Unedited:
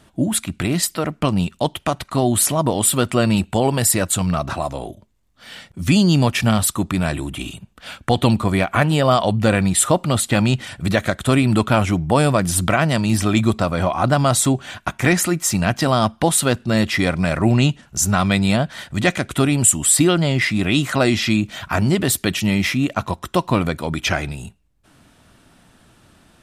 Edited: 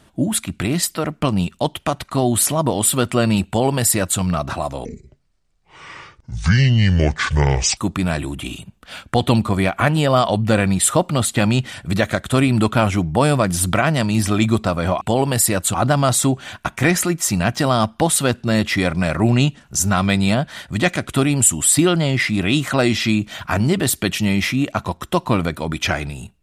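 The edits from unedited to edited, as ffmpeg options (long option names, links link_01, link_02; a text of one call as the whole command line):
ffmpeg -i in.wav -filter_complex "[0:a]asplit=5[link_01][link_02][link_03][link_04][link_05];[link_01]atrim=end=4.854[link_06];[link_02]atrim=start=4.85:end=6.72,asetpts=PTS-STARTPTS,asetrate=28224,aresample=44100[link_07];[link_03]atrim=start=6.716:end=13.962[link_08];[link_04]atrim=start=3.468:end=4.202[link_09];[link_05]atrim=start=13.958[link_10];[link_06][link_07]acrossfade=duration=0.004:curve1=hsin:curve2=hsin[link_11];[link_11][link_08]acrossfade=duration=0.004:curve1=hsin:curve2=hsin[link_12];[link_12][link_09]acrossfade=duration=0.004:curve1=hsin:curve2=hsin[link_13];[link_13][link_10]acrossfade=duration=0.004:curve1=hsin:curve2=hsin" out.wav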